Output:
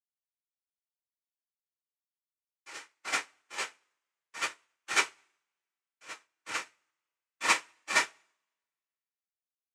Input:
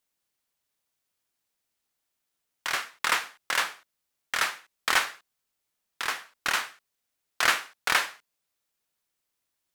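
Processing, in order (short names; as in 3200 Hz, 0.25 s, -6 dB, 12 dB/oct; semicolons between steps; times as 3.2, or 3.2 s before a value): noise vocoder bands 4; two-slope reverb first 0.25 s, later 2.1 s, from -18 dB, DRR -7.5 dB; upward expander 2.5:1, over -39 dBFS; gain -8 dB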